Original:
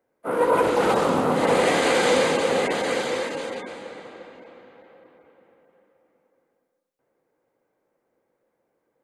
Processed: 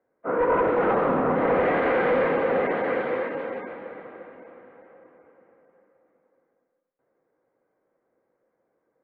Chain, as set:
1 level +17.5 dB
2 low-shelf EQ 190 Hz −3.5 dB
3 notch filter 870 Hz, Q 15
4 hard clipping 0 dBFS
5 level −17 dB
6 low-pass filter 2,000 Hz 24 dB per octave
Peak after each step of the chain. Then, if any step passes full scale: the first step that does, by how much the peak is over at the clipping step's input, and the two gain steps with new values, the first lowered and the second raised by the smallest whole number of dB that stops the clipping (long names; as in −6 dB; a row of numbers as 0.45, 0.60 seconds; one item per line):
+9.0, +8.5, +8.5, 0.0, −17.0, −15.5 dBFS
step 1, 8.5 dB
step 1 +8.5 dB, step 5 −8 dB